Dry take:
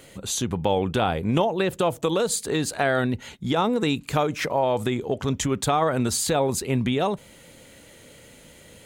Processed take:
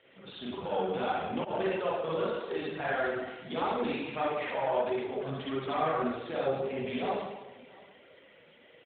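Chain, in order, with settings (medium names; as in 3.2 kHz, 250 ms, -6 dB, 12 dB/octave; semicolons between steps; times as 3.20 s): single-diode clipper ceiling -16 dBFS; spring tank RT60 1.1 s, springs 37/45/50 ms, chirp 45 ms, DRR -6.5 dB; 1.11–1.70 s: slow attack 115 ms; short-mantissa float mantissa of 8-bit; high-pass 470 Hz 6 dB/octave; 6.14–6.74 s: band-stop 950 Hz, Q 7.4; on a send: delay 673 ms -22.5 dB; on the sum: flange 1.6 Hz, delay 1.5 ms, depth 5.2 ms, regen -26%; 2.51–3.21 s: upward compressor, threshold -26 dBFS; trim -7 dB; AMR-NB 12.2 kbps 8 kHz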